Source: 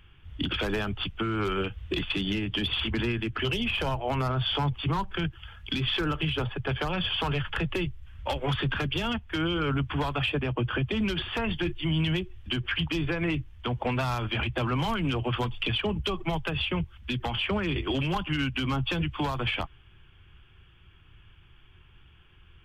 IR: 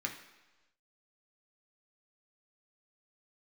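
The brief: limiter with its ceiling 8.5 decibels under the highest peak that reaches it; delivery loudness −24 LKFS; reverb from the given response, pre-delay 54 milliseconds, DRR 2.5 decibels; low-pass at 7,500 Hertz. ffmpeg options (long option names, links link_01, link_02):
-filter_complex "[0:a]lowpass=7500,alimiter=level_in=3dB:limit=-24dB:level=0:latency=1,volume=-3dB,asplit=2[link_01][link_02];[1:a]atrim=start_sample=2205,adelay=54[link_03];[link_02][link_03]afir=irnorm=-1:irlink=0,volume=-5dB[link_04];[link_01][link_04]amix=inputs=2:normalize=0,volume=9.5dB"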